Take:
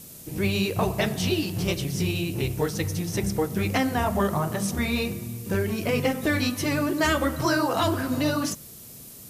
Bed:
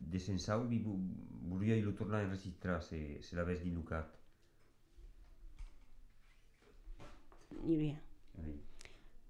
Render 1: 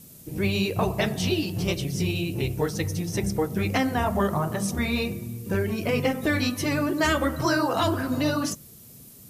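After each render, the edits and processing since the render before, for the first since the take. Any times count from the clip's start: denoiser 6 dB, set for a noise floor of -44 dBFS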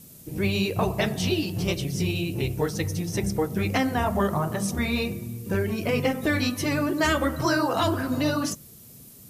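nothing audible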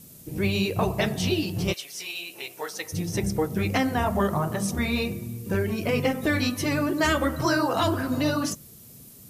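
1.72–2.92 HPF 1300 Hz -> 610 Hz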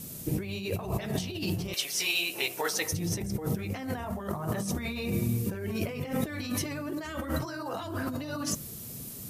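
negative-ratio compressor -33 dBFS, ratio -1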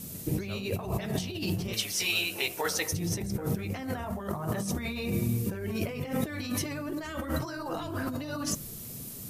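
add bed -7.5 dB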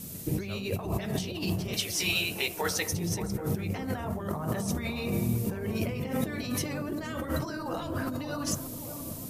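analogue delay 0.581 s, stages 4096, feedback 63%, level -9 dB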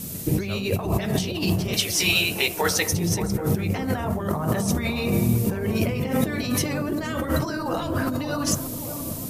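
gain +7.5 dB

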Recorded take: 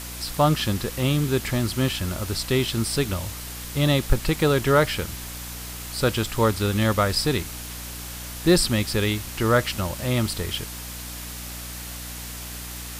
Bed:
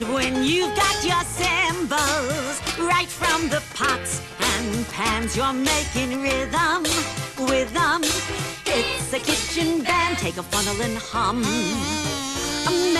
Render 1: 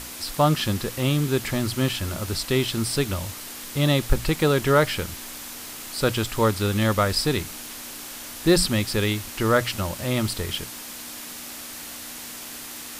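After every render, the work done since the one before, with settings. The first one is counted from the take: notches 60/120/180 Hz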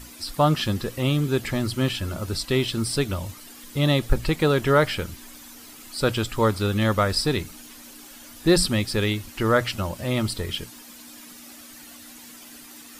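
denoiser 11 dB, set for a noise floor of -38 dBFS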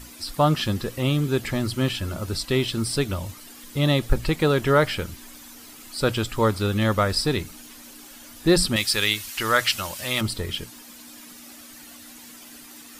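8.76–10.21 tilt shelf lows -9.5 dB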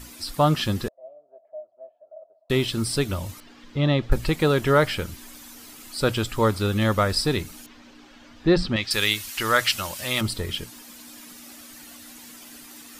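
0.88–2.5 Butterworth band-pass 640 Hz, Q 8; 3.4–4.12 air absorption 190 m; 7.66–8.91 air absorption 190 m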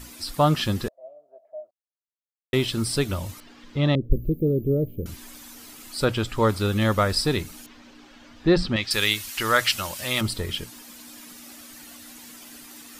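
1.71–2.53 mute; 3.95–5.06 inverse Chebyshev band-stop 860–9500 Hz; 6.04–6.48 high shelf 4900 Hz -> 10000 Hz -9 dB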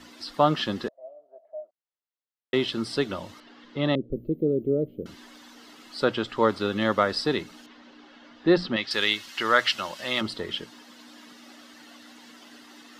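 three-band isolator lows -21 dB, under 180 Hz, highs -22 dB, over 5100 Hz; notch 2400 Hz, Q 8.7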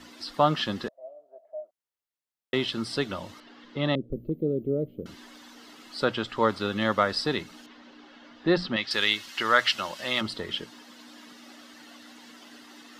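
dynamic EQ 370 Hz, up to -4 dB, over -35 dBFS, Q 1.2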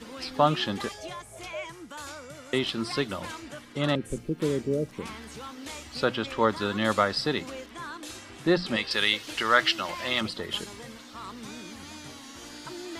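add bed -19.5 dB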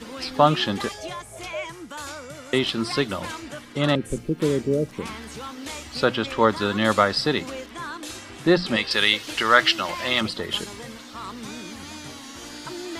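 gain +5 dB

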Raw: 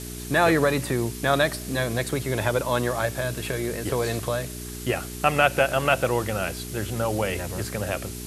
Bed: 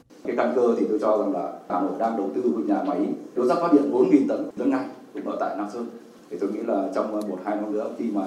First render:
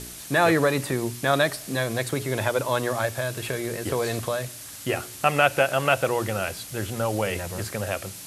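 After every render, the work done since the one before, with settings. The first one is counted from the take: de-hum 60 Hz, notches 7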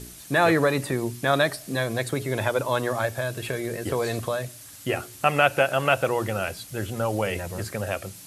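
denoiser 6 dB, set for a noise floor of -40 dBFS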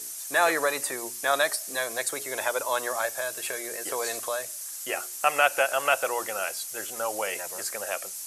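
HPF 640 Hz 12 dB/oct; resonant high shelf 4800 Hz +7 dB, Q 1.5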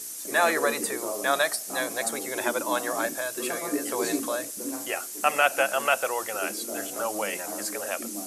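add bed -12.5 dB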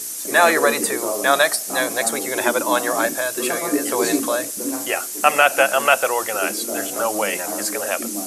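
gain +8 dB; limiter -1 dBFS, peak gain reduction 2 dB

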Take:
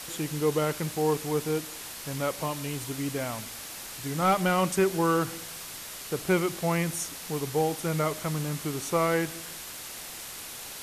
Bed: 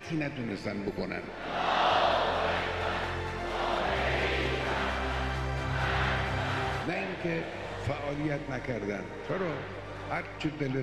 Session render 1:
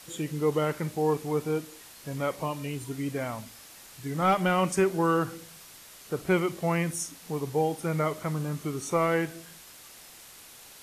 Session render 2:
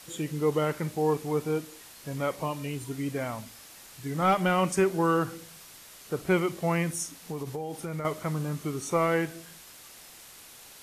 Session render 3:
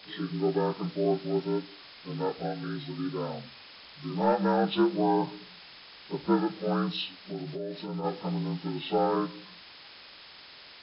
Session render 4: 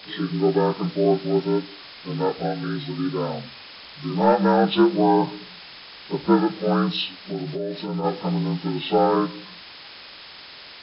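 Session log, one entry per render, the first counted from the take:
noise print and reduce 9 dB
7.19–8.05 compressor 12:1, threshold -30 dBFS
inharmonic rescaling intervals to 76%
gain +7.5 dB

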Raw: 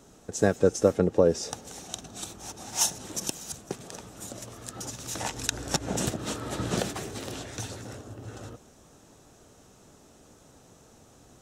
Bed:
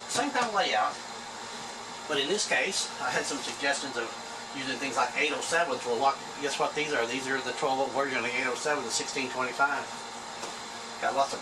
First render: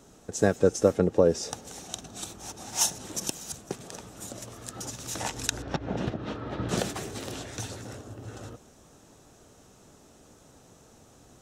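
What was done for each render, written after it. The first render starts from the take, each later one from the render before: 5.62–6.69 air absorption 300 m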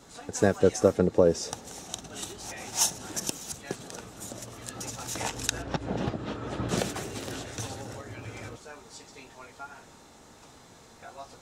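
add bed -17.5 dB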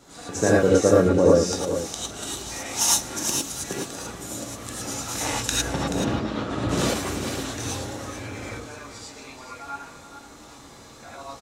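echo 0.431 s -10.5 dB; non-linear reverb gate 0.13 s rising, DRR -5.5 dB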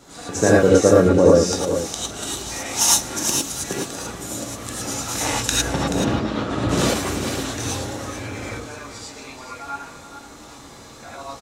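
gain +4 dB; limiter -2 dBFS, peak gain reduction 2 dB

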